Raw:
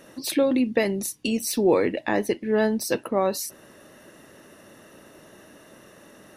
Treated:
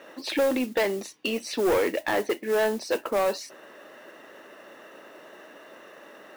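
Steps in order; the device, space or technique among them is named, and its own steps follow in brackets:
carbon microphone (band-pass filter 430–3,200 Hz; soft clipping −23.5 dBFS, distortion −10 dB; noise that follows the level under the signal 19 dB)
level +5 dB

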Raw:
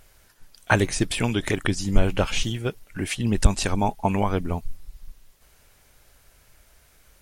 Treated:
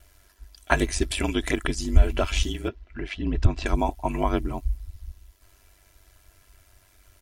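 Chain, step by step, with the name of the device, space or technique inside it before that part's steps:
0:02.68–0:03.66: high-frequency loss of the air 230 metres
ring-modulated robot voice (ring modulation 48 Hz; comb filter 3 ms, depth 60%)

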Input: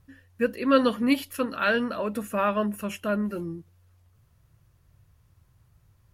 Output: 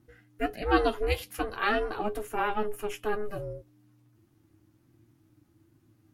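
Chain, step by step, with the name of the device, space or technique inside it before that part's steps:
alien voice (ring modulation 210 Hz; flanger 1.2 Hz, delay 8.6 ms, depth 1.1 ms, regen +41%)
level +3.5 dB

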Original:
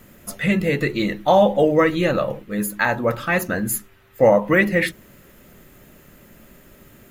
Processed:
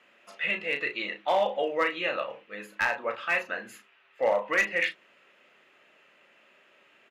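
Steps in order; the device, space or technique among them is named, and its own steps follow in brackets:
megaphone (band-pass filter 640–3,300 Hz; parametric band 2,700 Hz +9 dB 0.5 octaves; hard clipping −11 dBFS, distortion −20 dB; double-tracking delay 35 ms −8 dB)
level −7 dB

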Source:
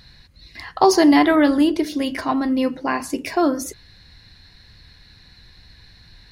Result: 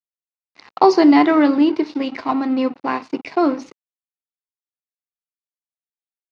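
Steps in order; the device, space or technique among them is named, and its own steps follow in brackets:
blown loudspeaker (dead-zone distortion −33.5 dBFS; loudspeaker in its box 190–4,300 Hz, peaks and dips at 600 Hz −4 dB, 1,700 Hz −7 dB, 3,300 Hz −9 dB)
level +3.5 dB

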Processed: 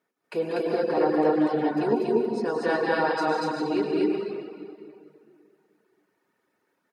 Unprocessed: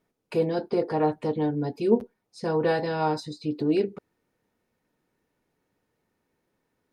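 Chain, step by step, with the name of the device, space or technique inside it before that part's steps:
stadium PA (high-pass filter 240 Hz 12 dB per octave; parametric band 1,500 Hz +6 dB 0.94 octaves; loudspeakers that aren't time-aligned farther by 65 metres −7 dB, 83 metres 0 dB; convolution reverb RT60 2.4 s, pre-delay 85 ms, DRR 0.5 dB)
0:01.46–0:02.00: parametric band 4,300 Hz → 960 Hz +4.5 dB 0.9 octaves
reverb reduction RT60 0.55 s
level −3 dB

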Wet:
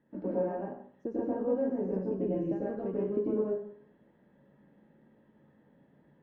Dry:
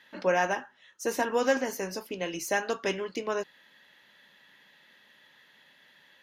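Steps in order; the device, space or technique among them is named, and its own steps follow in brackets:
television next door (downward compressor 4 to 1, threshold −34 dBFS, peak gain reduction 12.5 dB; low-pass filter 310 Hz 12 dB per octave; convolution reverb RT60 0.60 s, pre-delay 91 ms, DRR −6.5 dB)
level +6 dB

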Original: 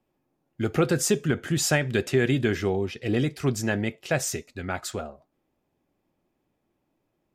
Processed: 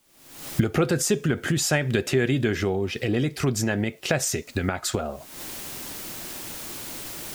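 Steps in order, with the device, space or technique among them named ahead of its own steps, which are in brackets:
cheap recorder with automatic gain (white noise bed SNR 39 dB; camcorder AGC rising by 64 dB per second)

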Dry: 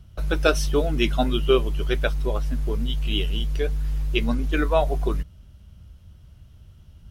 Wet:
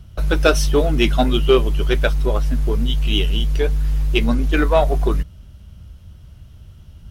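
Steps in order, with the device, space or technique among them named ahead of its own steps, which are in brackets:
parallel distortion (in parallel at −6 dB: hard clipping −20.5 dBFS, distortion −10 dB)
on the sum: level +3 dB

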